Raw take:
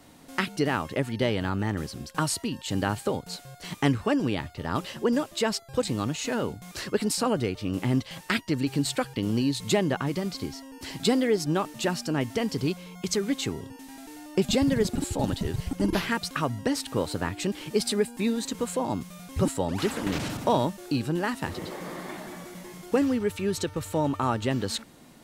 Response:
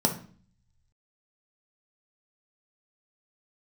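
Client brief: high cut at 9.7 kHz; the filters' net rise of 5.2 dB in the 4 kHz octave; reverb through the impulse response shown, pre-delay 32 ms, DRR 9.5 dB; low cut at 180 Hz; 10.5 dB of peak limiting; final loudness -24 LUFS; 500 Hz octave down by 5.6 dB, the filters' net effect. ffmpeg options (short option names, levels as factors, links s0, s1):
-filter_complex "[0:a]highpass=180,lowpass=9700,equalizer=f=500:t=o:g=-7,equalizer=f=4000:t=o:g=6.5,alimiter=limit=0.126:level=0:latency=1,asplit=2[s0][s1];[1:a]atrim=start_sample=2205,adelay=32[s2];[s1][s2]afir=irnorm=-1:irlink=0,volume=0.0944[s3];[s0][s3]amix=inputs=2:normalize=0,volume=1.88"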